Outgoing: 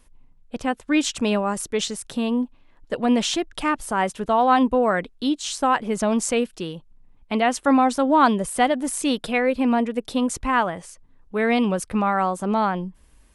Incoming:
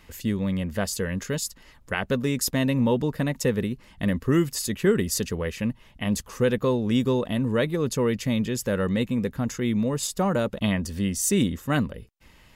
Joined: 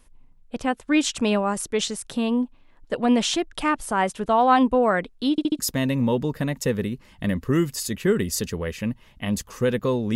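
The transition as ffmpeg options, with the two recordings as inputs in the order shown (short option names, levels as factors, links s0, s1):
-filter_complex "[0:a]apad=whole_dur=10.15,atrim=end=10.15,asplit=4[s0][s1][s2][s3];[s0]atrim=end=5.382[s4];[s1]atrim=start=5.308:end=5.382[s5];[s2]atrim=start=5.308:end=5.382[s6];[s3]atrim=start=5.308:end=5.382[s7];[1:a]atrim=start=2.378:end=6.94[s8];[s4][s5]acrossfade=d=0.004:c1=hsin:c2=hsin[s9];[s9][s6]acrossfade=d=0.004:c1=hsin:c2=hsin[s10];[s10][s7]acrossfade=d=0.004:c1=hsin:c2=hsin[s11];[s11][s8]acrossfade=d=0.004:c1=hsin:c2=hsin"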